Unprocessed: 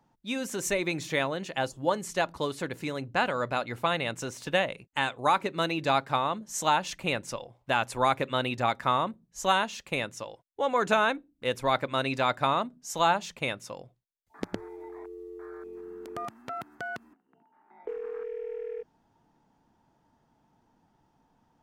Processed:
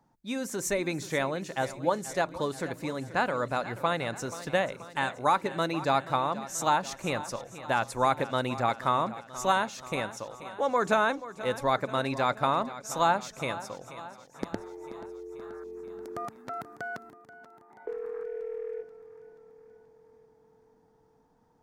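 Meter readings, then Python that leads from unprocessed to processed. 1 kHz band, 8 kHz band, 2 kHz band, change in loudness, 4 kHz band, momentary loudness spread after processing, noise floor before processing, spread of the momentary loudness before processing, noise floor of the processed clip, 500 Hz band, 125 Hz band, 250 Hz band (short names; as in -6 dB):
0.0 dB, 0.0 dB, -2.0 dB, -0.5 dB, -4.5 dB, 15 LU, -71 dBFS, 16 LU, -64 dBFS, 0.0 dB, 0.0 dB, 0.0 dB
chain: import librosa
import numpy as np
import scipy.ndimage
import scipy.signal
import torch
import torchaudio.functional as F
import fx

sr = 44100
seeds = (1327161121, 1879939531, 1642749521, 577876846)

y = fx.peak_eq(x, sr, hz=2900.0, db=-8.0, octaves=0.67)
y = fx.echo_feedback(y, sr, ms=482, feedback_pct=60, wet_db=-15)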